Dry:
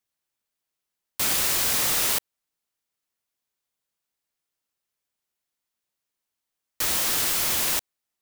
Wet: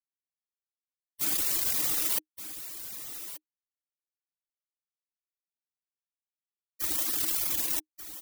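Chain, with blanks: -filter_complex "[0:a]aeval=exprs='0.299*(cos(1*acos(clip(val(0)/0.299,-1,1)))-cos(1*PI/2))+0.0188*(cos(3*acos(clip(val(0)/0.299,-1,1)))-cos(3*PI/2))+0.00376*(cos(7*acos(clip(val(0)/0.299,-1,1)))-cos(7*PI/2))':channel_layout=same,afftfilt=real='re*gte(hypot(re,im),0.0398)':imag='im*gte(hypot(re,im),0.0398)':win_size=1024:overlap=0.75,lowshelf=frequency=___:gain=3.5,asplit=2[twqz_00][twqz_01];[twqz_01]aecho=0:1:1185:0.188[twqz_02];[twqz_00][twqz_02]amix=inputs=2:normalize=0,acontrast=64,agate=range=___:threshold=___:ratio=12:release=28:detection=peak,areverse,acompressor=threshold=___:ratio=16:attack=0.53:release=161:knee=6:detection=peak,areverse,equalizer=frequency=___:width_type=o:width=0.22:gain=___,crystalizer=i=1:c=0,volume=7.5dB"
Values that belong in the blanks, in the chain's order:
140, -20dB, -23dB, -35dB, 310, 12.5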